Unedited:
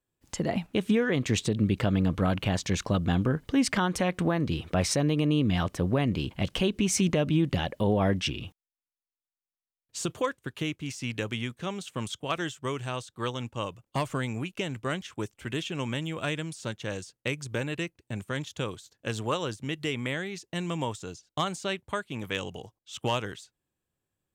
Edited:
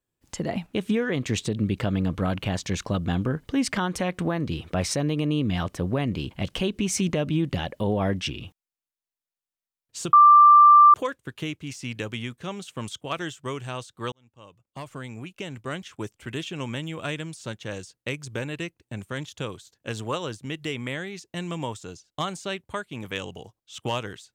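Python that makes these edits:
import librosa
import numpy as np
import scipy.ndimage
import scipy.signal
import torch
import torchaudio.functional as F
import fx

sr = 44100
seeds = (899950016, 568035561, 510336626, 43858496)

y = fx.edit(x, sr, fx.insert_tone(at_s=10.13, length_s=0.81, hz=1180.0, db=-9.0),
    fx.fade_in_span(start_s=13.31, length_s=1.89), tone=tone)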